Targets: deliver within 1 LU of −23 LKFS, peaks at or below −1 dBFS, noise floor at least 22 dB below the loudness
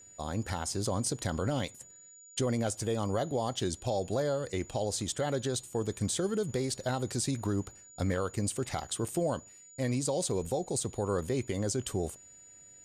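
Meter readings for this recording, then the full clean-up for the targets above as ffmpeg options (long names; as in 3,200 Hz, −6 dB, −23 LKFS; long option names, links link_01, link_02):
interfering tone 6,900 Hz; level of the tone −52 dBFS; integrated loudness −33.0 LKFS; sample peak −21.0 dBFS; target loudness −23.0 LKFS
→ -af "bandreject=frequency=6900:width=30"
-af "volume=10dB"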